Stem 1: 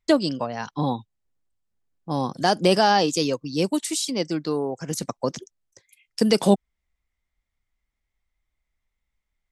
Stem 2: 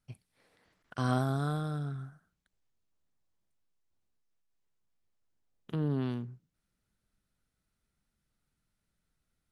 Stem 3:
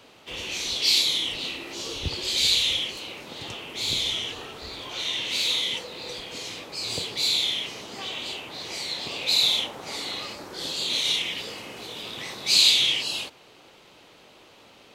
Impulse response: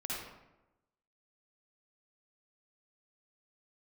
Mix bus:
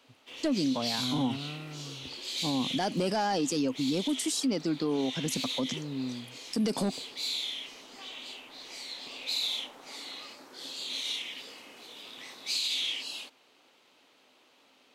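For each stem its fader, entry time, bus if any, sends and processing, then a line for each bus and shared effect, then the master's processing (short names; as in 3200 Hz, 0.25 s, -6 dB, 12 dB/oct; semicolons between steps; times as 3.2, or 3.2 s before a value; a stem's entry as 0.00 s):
-2.5 dB, 0.35 s, no send, soft clip -12.5 dBFS, distortion -14 dB
-14.5 dB, 0.00 s, no send, harmonic-percussive split harmonic +5 dB
-9.5 dB, 0.00 s, no send, HPF 570 Hz 6 dB/oct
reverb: off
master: bell 260 Hz +11.5 dB 0.29 oct; limiter -21.5 dBFS, peak gain reduction 11 dB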